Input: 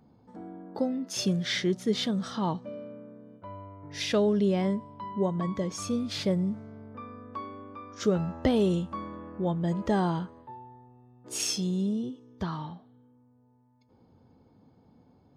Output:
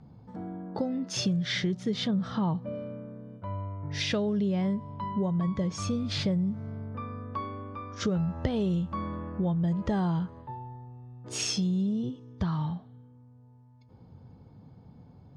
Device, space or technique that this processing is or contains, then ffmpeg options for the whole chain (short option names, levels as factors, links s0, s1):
jukebox: -filter_complex "[0:a]lowpass=5900,lowshelf=f=200:t=q:w=1.5:g=7,acompressor=threshold=0.0316:ratio=4,asettb=1/sr,asplit=3[s0][s1][s2];[s0]atrim=end=2.074[s3];[s1]atrim=start=2.07:end=2.75,asetpts=PTS-STARTPTS,afade=t=in:d=0.004:c=qsin,afade=t=out:st=0.676:d=0.004:c=qsin,aemphasis=mode=reproduction:type=75fm[s4];[s2]atrim=start=2.746[s5];[s3][s4]acrossfade=d=0.004:c1=hsin:c2=qsin[s6];[s6][s5]acrossfade=d=0.004:c1=qsin:c2=hsin,volume=1.5"